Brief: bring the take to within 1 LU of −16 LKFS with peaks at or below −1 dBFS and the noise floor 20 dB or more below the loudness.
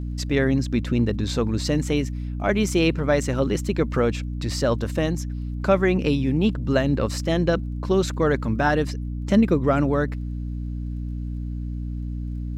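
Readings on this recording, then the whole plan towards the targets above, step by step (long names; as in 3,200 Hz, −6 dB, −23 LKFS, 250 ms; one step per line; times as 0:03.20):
crackle rate 21 per second; mains hum 60 Hz; hum harmonics up to 300 Hz; level of the hum −26 dBFS; integrated loudness −23.5 LKFS; sample peak −6.0 dBFS; target loudness −16.0 LKFS
→ click removal
hum removal 60 Hz, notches 5
level +7.5 dB
brickwall limiter −1 dBFS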